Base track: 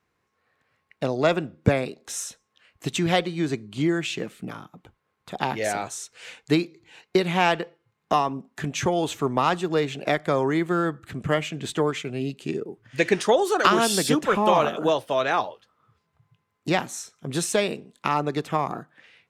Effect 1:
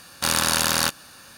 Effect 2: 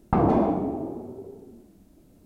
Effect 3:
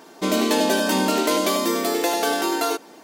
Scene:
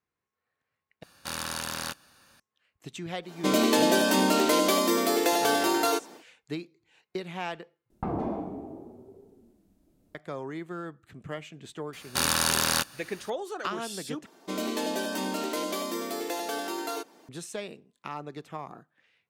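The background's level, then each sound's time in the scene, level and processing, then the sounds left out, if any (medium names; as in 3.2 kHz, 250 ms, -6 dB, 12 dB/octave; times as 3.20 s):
base track -14 dB
1.03 s: replace with 1 -11.5 dB + treble shelf 4.3 kHz -3.5 dB
3.22 s: add 3 -2.5 dB, fades 0.10 s
7.90 s: replace with 2 -10.5 dB
11.93 s: add 1 -4 dB
14.26 s: replace with 3 -11 dB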